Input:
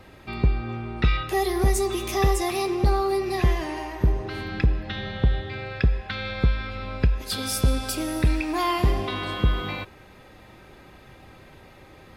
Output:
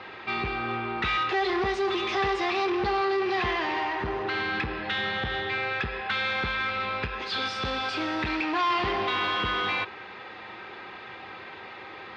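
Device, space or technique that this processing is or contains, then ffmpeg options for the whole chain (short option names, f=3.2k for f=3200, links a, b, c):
overdrive pedal into a guitar cabinet: -filter_complex "[0:a]asplit=2[a][b];[b]highpass=f=720:p=1,volume=25dB,asoftclip=type=tanh:threshold=-11.5dB[c];[a][c]amix=inputs=2:normalize=0,lowpass=f=2.8k:p=1,volume=-6dB,highpass=100,equalizer=f=150:t=q:w=4:g=-10,equalizer=f=270:t=q:w=4:g=-8,equalizer=f=590:t=q:w=4:g=-9,lowpass=f=4.5k:w=0.5412,lowpass=f=4.5k:w=1.3066,volume=-5.5dB"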